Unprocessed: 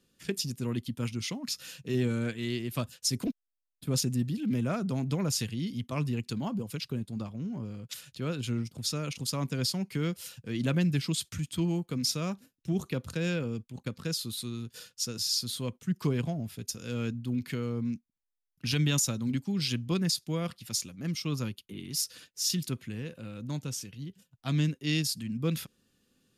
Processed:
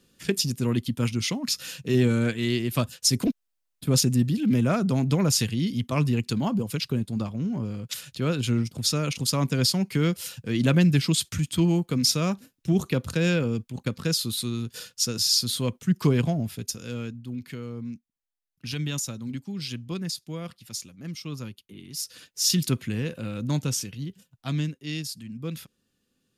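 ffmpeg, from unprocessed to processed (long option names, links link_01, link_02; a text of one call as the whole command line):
ffmpeg -i in.wav -af "volume=19.5dB,afade=type=out:start_time=16.4:duration=0.71:silence=0.298538,afade=type=in:start_time=21.96:duration=0.74:silence=0.251189,afade=type=out:start_time=23.68:duration=1.08:silence=0.237137" out.wav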